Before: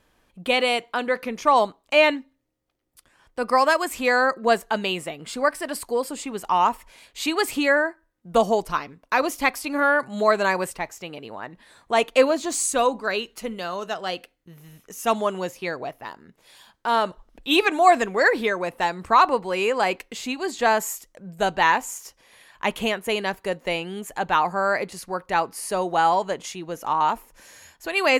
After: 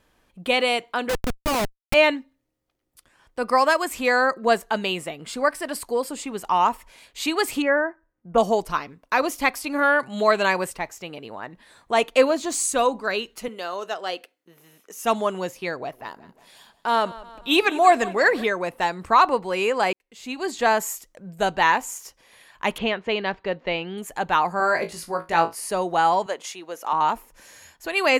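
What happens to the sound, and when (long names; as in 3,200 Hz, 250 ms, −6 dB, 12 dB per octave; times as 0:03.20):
0:01.09–0:01.94: comparator with hysteresis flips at −23.5 dBFS
0:07.62–0:08.38: moving average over 11 samples
0:09.83–0:10.59: parametric band 3,000 Hz +7.5 dB 0.69 octaves
0:13.48–0:15.05: Chebyshev high-pass filter 360 Hz
0:15.75–0:18.44: repeating echo 180 ms, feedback 55%, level −19 dB
0:19.93–0:20.39: fade in quadratic
0:22.78–0:23.98: low-pass filter 4,300 Hz 24 dB per octave
0:24.58–0:25.55: flutter between parallel walls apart 3.1 metres, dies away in 0.2 s
0:26.26–0:26.93: high-pass filter 420 Hz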